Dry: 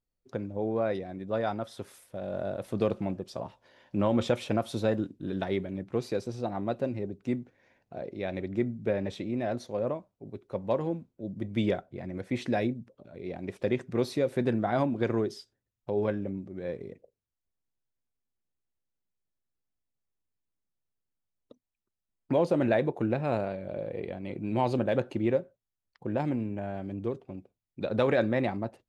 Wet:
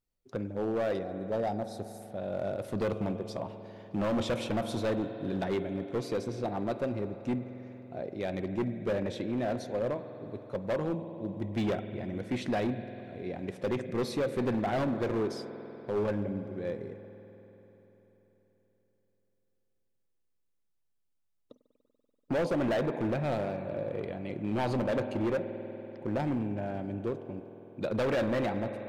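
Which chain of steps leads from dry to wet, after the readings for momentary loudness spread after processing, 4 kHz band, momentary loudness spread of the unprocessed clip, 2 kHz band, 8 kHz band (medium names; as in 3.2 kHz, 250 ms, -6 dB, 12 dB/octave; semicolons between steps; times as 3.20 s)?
11 LU, 0.0 dB, 13 LU, -1.0 dB, no reading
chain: time-frequency box 1.05–2.01 s, 920–3700 Hz -13 dB; spring tank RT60 4 s, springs 48 ms, chirp 30 ms, DRR 10.5 dB; overload inside the chain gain 25.5 dB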